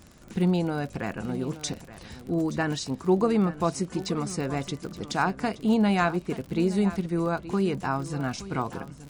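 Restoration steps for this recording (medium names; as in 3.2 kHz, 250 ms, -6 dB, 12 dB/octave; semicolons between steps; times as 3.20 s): de-click; inverse comb 873 ms -15 dB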